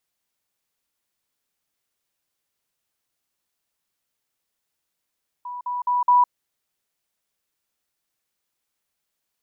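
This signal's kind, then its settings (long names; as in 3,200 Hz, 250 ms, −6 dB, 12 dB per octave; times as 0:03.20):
level staircase 982 Hz −30 dBFS, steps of 6 dB, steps 4, 0.16 s 0.05 s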